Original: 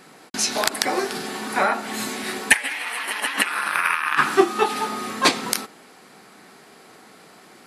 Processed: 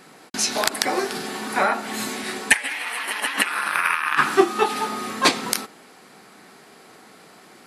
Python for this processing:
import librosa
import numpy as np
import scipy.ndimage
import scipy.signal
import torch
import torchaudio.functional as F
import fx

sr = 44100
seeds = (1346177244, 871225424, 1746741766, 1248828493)

y = fx.cheby1_lowpass(x, sr, hz=10000.0, order=2, at=(2.21, 2.69))